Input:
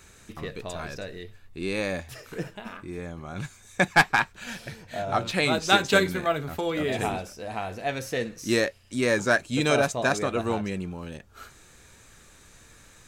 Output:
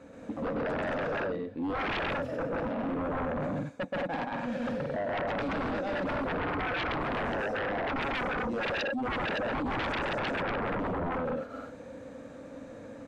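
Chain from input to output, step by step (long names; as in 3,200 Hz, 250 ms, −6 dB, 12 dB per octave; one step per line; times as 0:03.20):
reversed playback
downward compressor 12 to 1, threshold −33 dBFS, peak gain reduction 20 dB
reversed playback
pair of resonant band-passes 380 Hz, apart 0.91 octaves
loudspeakers that aren't time-aligned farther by 44 metres 0 dB, 60 metres −4 dB, 77 metres −3 dB
sine wavefolder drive 17 dB, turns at −26.5 dBFS
level −2 dB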